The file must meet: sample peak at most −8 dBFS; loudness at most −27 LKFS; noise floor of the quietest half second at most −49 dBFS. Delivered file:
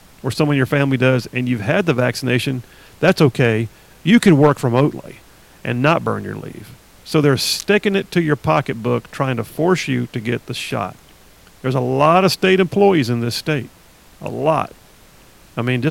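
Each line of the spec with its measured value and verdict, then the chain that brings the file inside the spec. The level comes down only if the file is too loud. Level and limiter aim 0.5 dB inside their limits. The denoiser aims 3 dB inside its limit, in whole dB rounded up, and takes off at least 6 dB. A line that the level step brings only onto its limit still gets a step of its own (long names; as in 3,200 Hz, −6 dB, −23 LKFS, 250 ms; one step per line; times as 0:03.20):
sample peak −2.0 dBFS: out of spec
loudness −17.0 LKFS: out of spec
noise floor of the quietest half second −47 dBFS: out of spec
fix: level −10.5 dB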